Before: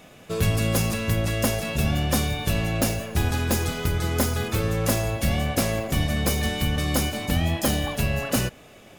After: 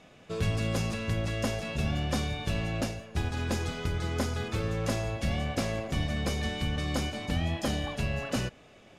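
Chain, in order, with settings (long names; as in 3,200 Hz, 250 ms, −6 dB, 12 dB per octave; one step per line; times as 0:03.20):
low-pass filter 6,400 Hz 12 dB per octave
0:02.81–0:03.37: expander for the loud parts 1.5 to 1, over −32 dBFS
level −6.5 dB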